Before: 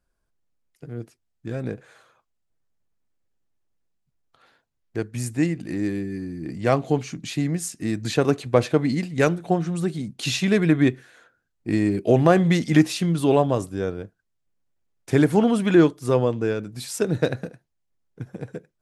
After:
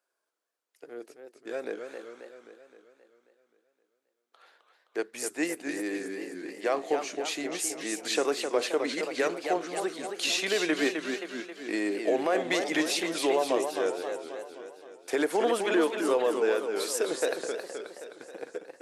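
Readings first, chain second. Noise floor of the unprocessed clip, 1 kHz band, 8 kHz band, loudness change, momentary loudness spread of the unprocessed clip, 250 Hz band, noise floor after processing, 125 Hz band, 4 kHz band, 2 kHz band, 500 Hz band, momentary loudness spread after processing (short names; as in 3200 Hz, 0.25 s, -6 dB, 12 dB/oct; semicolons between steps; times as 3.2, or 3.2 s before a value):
-75 dBFS, -4.0 dB, +1.0 dB, -7.0 dB, 18 LU, -11.0 dB, -81 dBFS, -30.5 dB, +0.5 dB, -1.5 dB, -4.5 dB, 17 LU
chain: HPF 390 Hz 24 dB/oct; limiter -17 dBFS, peak gain reduction 11 dB; warbling echo 0.264 s, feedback 58%, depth 170 cents, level -6.5 dB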